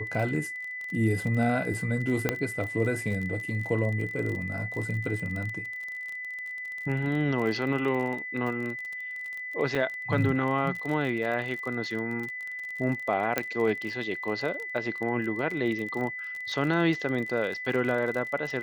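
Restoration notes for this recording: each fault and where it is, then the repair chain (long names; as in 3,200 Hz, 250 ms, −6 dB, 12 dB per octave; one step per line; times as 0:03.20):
surface crackle 32 per second −33 dBFS
whistle 2,000 Hz −34 dBFS
0:02.29: click −10 dBFS
0:09.75: drop-out 4.6 ms
0:13.38: click −10 dBFS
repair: click removal
notch filter 2,000 Hz, Q 30
repair the gap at 0:09.75, 4.6 ms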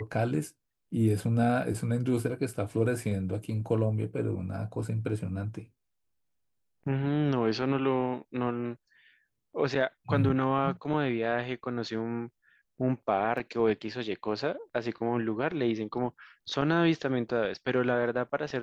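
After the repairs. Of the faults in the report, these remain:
0:13.38: click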